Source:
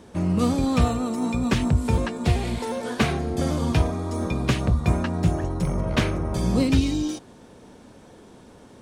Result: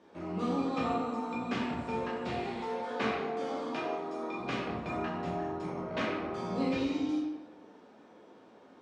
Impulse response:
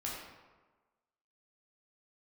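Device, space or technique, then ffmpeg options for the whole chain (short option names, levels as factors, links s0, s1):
supermarket ceiling speaker: -filter_complex "[0:a]aemphasis=mode=reproduction:type=50fm,asettb=1/sr,asplit=3[s0][s1][s2];[s0]atrim=end=3.164[s3];[s1]atrim=start=3.16:end=4.38,asetpts=PTS-STARTPTS,afade=t=in:d=0.004:c=qsin,afade=t=out:st=1.216:d=0.004:c=qsin,highpass=270[s4];[s2]atrim=start=4.376[s5];[s3][s4]acrossfade=d=0.004:c1=hsin:c2=qsin[s6];[s6][s5]acrossfade=d=0.004:c1=qsin:c2=hsin,highpass=300,lowpass=6500[s7];[1:a]atrim=start_sample=2205[s8];[s7][s8]afir=irnorm=-1:irlink=0,volume=0.422"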